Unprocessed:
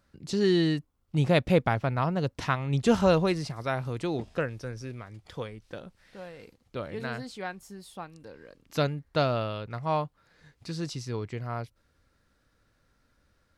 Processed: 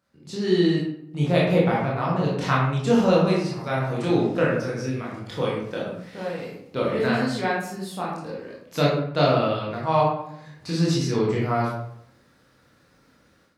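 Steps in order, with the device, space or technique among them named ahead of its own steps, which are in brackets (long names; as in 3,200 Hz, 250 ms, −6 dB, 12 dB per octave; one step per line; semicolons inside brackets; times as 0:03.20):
far laptop microphone (convolution reverb RT60 0.70 s, pre-delay 18 ms, DRR −5 dB; high-pass filter 120 Hz 12 dB per octave; automatic gain control gain up to 12 dB)
level −6 dB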